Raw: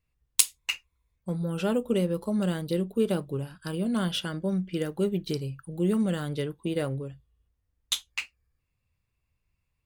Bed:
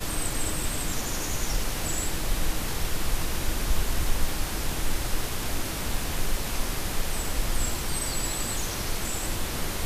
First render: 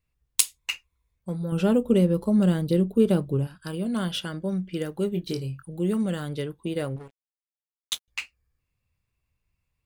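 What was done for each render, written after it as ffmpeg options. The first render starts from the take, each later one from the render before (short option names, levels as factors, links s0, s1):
-filter_complex "[0:a]asettb=1/sr,asplit=3[s0][s1][s2];[s0]atrim=end=1.524[s3];[s1]atrim=start=1.52:end=3.47,asetpts=PTS-STARTPTS,afade=t=in:d=0.004:c=qsin,afade=t=out:st=1.946:d=0.004:c=qsin,lowshelf=f=440:g=8.5[s4];[s2]atrim=start=3.466[s5];[s3][s4]acrossfade=d=0.004:c1=hsin:c2=qsin[s6];[s6][s5]acrossfade=d=0.004:c1=qsin:c2=hsin,asettb=1/sr,asplit=3[s7][s8][s9];[s7]atrim=end=5.104[s10];[s8]atrim=start=5.1:end=5.63,asetpts=PTS-STARTPTS,afade=t=in:d=0.004:c=qsin,afade=t=out:st=0.526:d=0.004:c=qsin,asplit=2[s11][s12];[s12]adelay=23,volume=0.422[s13];[s11][s13]amix=inputs=2:normalize=0,atrim=end_sample=23373[s14];[s9]atrim=start=5.626[s15];[s10][s14]acrossfade=d=0.004:c1=hsin:c2=qsin[s16];[s16][s15]acrossfade=d=0.004:c1=qsin:c2=hsin,asettb=1/sr,asplit=3[s17][s18][s19];[s17]atrim=end=6.964[s20];[s18]atrim=start=6.96:end=8.08,asetpts=PTS-STARTPTS,afade=t=in:d=0.004:c=qsin,afade=t=out:st=1.116:d=0.004:c=qsin,aeval=exprs='sgn(val(0))*max(abs(val(0))-0.0141,0)':c=same[s21];[s19]atrim=start=8.076[s22];[s20][s21]acrossfade=d=0.004:c1=hsin:c2=qsin[s23];[s23][s22]acrossfade=d=0.004:c1=qsin:c2=hsin"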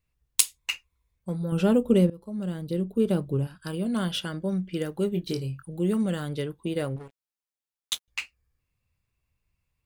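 -filter_complex "[0:a]asplit=2[s0][s1];[s0]atrim=end=2.1,asetpts=PTS-STARTPTS,afade=t=out:st=2.096:d=0.004:c=hsin:silence=0.0794328[s2];[s1]atrim=start=2.1,asetpts=PTS-STARTPTS,afade=t=in:d=1.51:silence=0.0794328[s3];[s2][s3]concat=n=2:v=0:a=1"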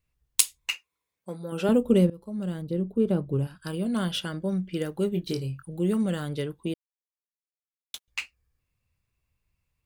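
-filter_complex "[0:a]asettb=1/sr,asplit=3[s0][s1][s2];[s0]atrim=end=0.734[s3];[s1]atrim=start=0.73:end=1.69,asetpts=PTS-STARTPTS,afade=t=in:d=0.004:c=qsin,afade=t=out:st=0.956:d=0.004:c=qsin,highpass=290[s4];[s2]atrim=start=1.686[s5];[s3][s4]acrossfade=d=0.004:c1=hsin:c2=qsin[s6];[s6][s5]acrossfade=d=0.004:c1=qsin:c2=hsin,asettb=1/sr,asplit=3[s7][s8][s9];[s7]atrim=end=2.624[s10];[s8]atrim=start=2.62:end=3.33,asetpts=PTS-STARTPTS,afade=t=in:d=0.004:c=qsin,afade=t=out:st=0.706:d=0.004:c=qsin,highshelf=f=2300:g=-10[s11];[s9]atrim=start=3.326[s12];[s10][s11]acrossfade=d=0.004:c1=hsin:c2=qsin[s13];[s13][s12]acrossfade=d=0.004:c1=qsin:c2=hsin,asplit=3[s14][s15][s16];[s14]atrim=end=6.74,asetpts=PTS-STARTPTS,afade=t=out:st=6.736:d=0.004:c=hsin[s17];[s15]atrim=start=6.74:end=7.94,asetpts=PTS-STARTPTS,volume=0[s18];[s16]atrim=start=7.94,asetpts=PTS-STARTPTS,afade=t=in:d=0.004:c=hsin[s19];[s17][s18][s19]concat=n=3:v=0:a=1"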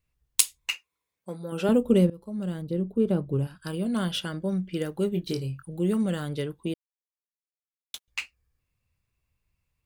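-af anull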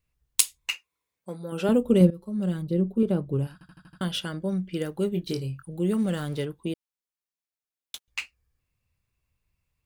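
-filter_complex "[0:a]asettb=1/sr,asplit=3[s0][s1][s2];[s0]atrim=end=2.004[s3];[s1]atrim=start=2:end=3.03,asetpts=PTS-STARTPTS,afade=t=in:d=0.004:c=qsin,afade=t=out:st=1.026:d=0.004:c=qsin,aecho=1:1:5.4:0.65,atrim=end_sample=45423[s4];[s2]atrim=start=3.026[s5];[s3][s4]acrossfade=d=0.004:c1=hsin:c2=qsin[s6];[s6][s5]acrossfade=d=0.004:c1=qsin:c2=hsin,asettb=1/sr,asplit=3[s7][s8][s9];[s7]atrim=end=5.984[s10];[s8]atrim=start=5.98:end=6.45,asetpts=PTS-STARTPTS,afade=t=in:d=0.004:c=qsin,afade=t=out:st=0.466:d=0.004:c=qsin,aeval=exprs='val(0)+0.5*0.0075*sgn(val(0))':c=same[s11];[s9]atrim=start=6.446[s12];[s10][s11]acrossfade=d=0.004:c1=hsin:c2=qsin[s13];[s13][s12]acrossfade=d=0.004:c1=qsin:c2=hsin,asplit=7[s14][s15][s16][s17][s18][s19][s20];[s14]atrim=end=3.612[s21];[s15]atrim=start=3.528:end=3.612[s22];[s16]atrim=start=3.528:end=3.612[s23];[s17]atrim=start=3.528:end=3.612[s24];[s18]atrim=start=3.528:end=3.612[s25];[s19]atrim=start=3.528:end=3.612[s26];[s20]atrim=start=4.008[s27];[s21][s22]acrossfade=d=0.004:c1=hsin:c2=hsin[s28];[s28][s23]acrossfade=d=0.004:c1=hsin:c2=hsin[s29];[s29][s24]acrossfade=d=0.004:c1=hsin:c2=hsin[s30];[s30][s25]acrossfade=d=0.004:c1=hsin:c2=hsin[s31];[s31][s26]acrossfade=d=0.004:c1=hsin:c2=hsin[s32];[s32][s27]acrossfade=d=0.004:c1=hsin:c2=hsin"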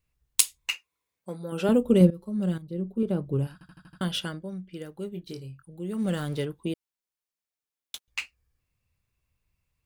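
-filter_complex "[0:a]asplit=4[s0][s1][s2][s3];[s0]atrim=end=2.58,asetpts=PTS-STARTPTS,afade=t=out:st=2.576:d=0.004:c=hsin:silence=0.223872[s4];[s1]atrim=start=2.58:end=4.51,asetpts=PTS-STARTPTS,afade=t=in:d=0.8:silence=0.223872,afade=t=out:st=1.7:d=0.23:c=qua:silence=0.354813[s5];[s2]atrim=start=4.51:end=5.85,asetpts=PTS-STARTPTS,volume=0.355[s6];[s3]atrim=start=5.85,asetpts=PTS-STARTPTS,afade=t=in:d=0.23:c=qua:silence=0.354813[s7];[s4][s5][s6][s7]concat=n=4:v=0:a=1"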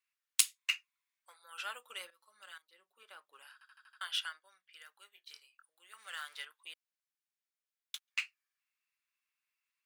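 -af "highpass=f=1300:w=0.5412,highpass=f=1300:w=1.3066,highshelf=f=3400:g=-7.5"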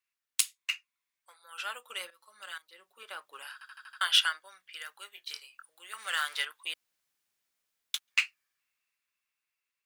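-af "dynaudnorm=f=450:g=9:m=4.22"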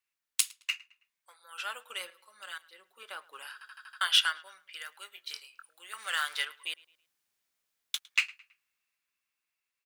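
-filter_complex "[0:a]asplit=2[s0][s1];[s1]adelay=108,lowpass=f=4500:p=1,volume=0.0841,asplit=2[s2][s3];[s3]adelay=108,lowpass=f=4500:p=1,volume=0.42,asplit=2[s4][s5];[s5]adelay=108,lowpass=f=4500:p=1,volume=0.42[s6];[s0][s2][s4][s6]amix=inputs=4:normalize=0"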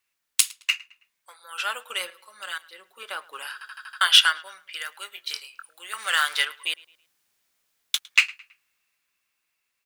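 -af "volume=2.82,alimiter=limit=0.891:level=0:latency=1"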